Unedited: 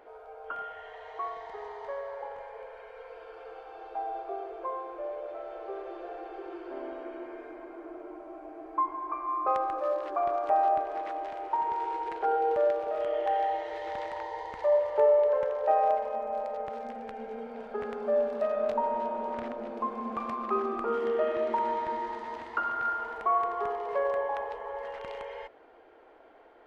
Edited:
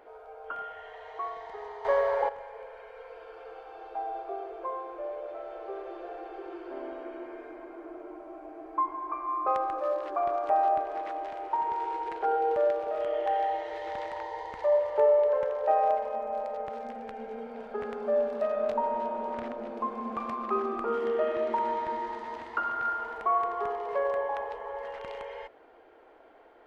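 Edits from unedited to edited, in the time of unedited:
1.85–2.29 s: gain +12 dB

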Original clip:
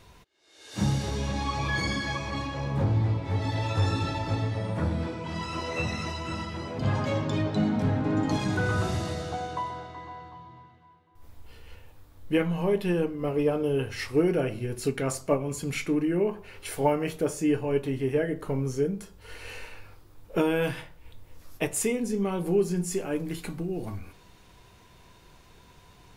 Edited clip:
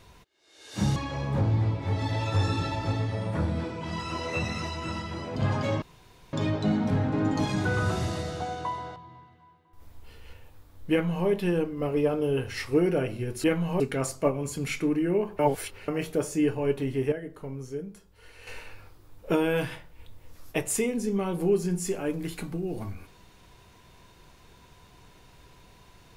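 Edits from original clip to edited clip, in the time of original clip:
0.96–2.39 s: delete
7.25 s: insert room tone 0.51 s
9.88–10.38 s: delete
12.33–12.69 s: copy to 14.86 s
16.45–16.94 s: reverse
18.18–19.53 s: gain -8.5 dB

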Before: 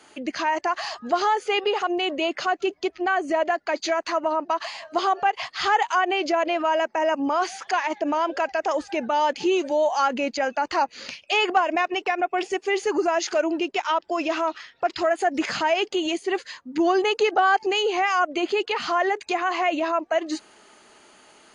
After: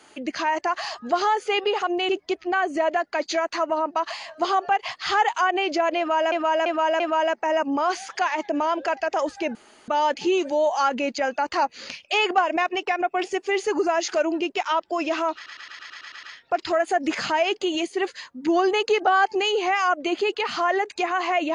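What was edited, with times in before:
2.09–2.63 s: delete
6.52–6.86 s: loop, 4 plays
9.07 s: insert room tone 0.33 s
14.54 s: stutter 0.11 s, 9 plays

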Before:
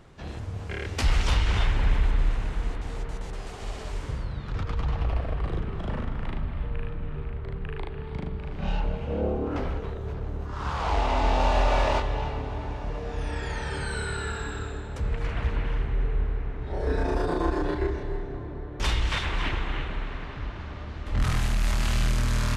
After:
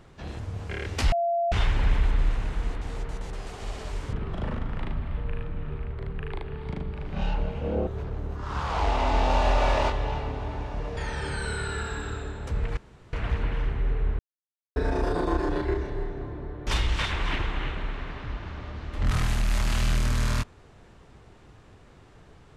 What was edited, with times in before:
1.12–1.52 s: bleep 685 Hz -22 dBFS
4.13–5.59 s: delete
9.33–9.97 s: delete
13.07–13.46 s: delete
15.26 s: insert room tone 0.36 s
16.32–16.89 s: mute

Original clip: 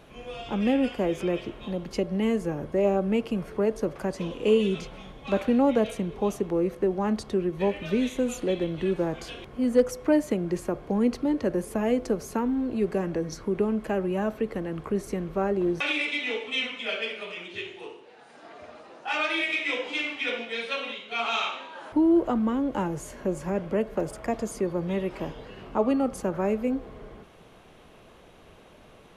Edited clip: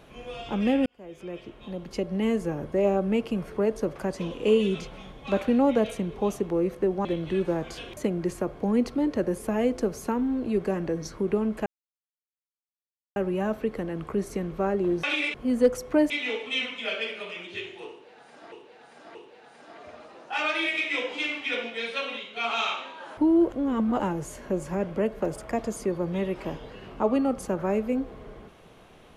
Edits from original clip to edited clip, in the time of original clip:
0.86–2.30 s: fade in
7.05–8.56 s: delete
9.48–10.24 s: move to 16.11 s
13.93 s: insert silence 1.50 s
17.90–18.53 s: loop, 3 plays
22.27–22.75 s: reverse

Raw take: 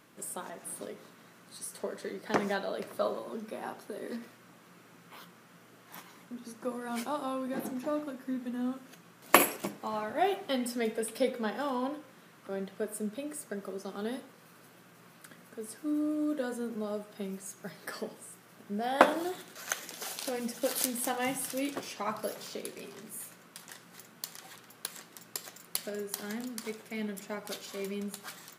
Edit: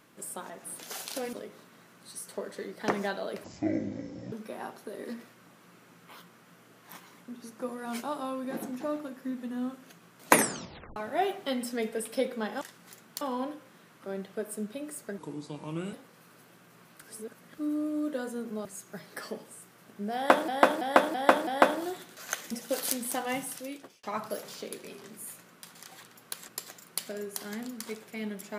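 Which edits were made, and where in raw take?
2.90–3.35 s: speed 51%
9.27 s: tape stop 0.72 s
13.61–14.18 s: speed 76%
15.27–15.83 s: reverse
16.90–17.36 s: delete
18.86–19.19 s: loop, 5 plays
19.90–20.44 s: move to 0.79 s
21.24–21.96 s: fade out linear
23.68–24.28 s: move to 11.64 s
25.01–25.26 s: delete

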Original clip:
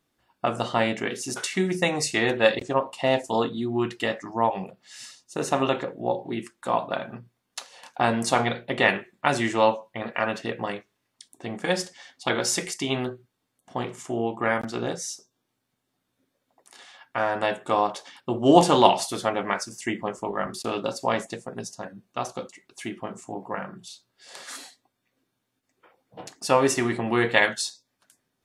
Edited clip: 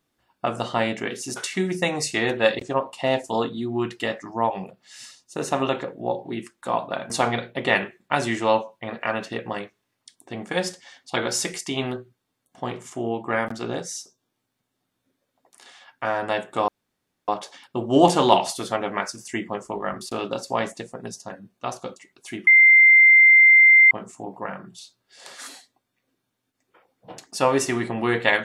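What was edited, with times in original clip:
7.10–8.23 s: delete
17.81 s: insert room tone 0.60 s
23.00 s: add tone 2.09 kHz -9 dBFS 1.44 s

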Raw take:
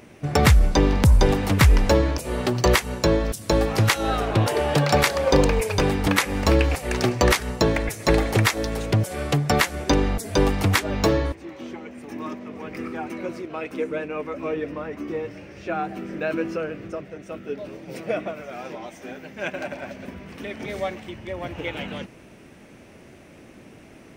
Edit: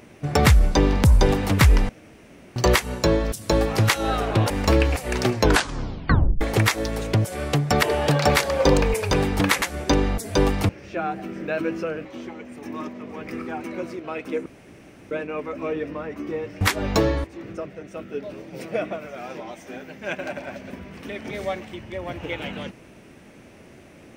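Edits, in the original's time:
1.89–2.56 s: room tone
4.50–6.29 s: move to 9.62 s
7.11 s: tape stop 1.09 s
10.69–11.51 s: swap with 15.42–16.78 s
13.92 s: insert room tone 0.65 s

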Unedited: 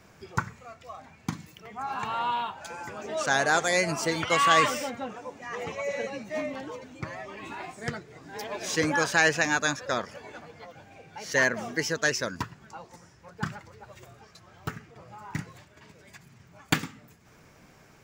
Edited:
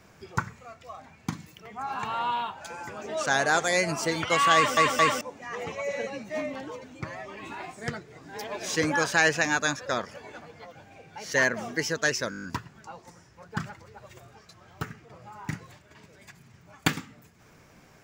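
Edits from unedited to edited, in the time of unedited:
4.55 s: stutter in place 0.22 s, 3 plays
12.30 s: stutter 0.02 s, 8 plays

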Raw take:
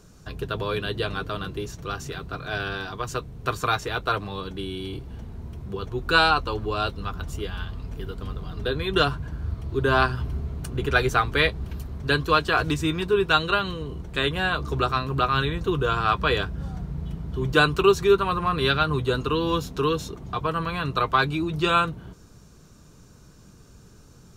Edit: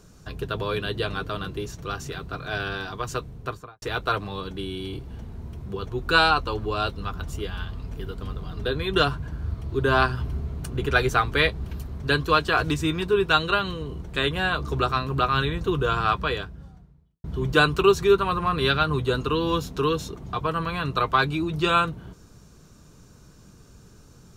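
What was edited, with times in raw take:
3.26–3.82 s: studio fade out
16.06–17.24 s: fade out quadratic

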